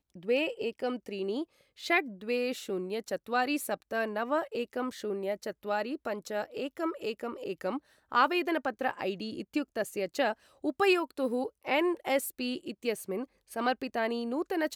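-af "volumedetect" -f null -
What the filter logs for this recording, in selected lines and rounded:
mean_volume: -32.4 dB
max_volume: -13.2 dB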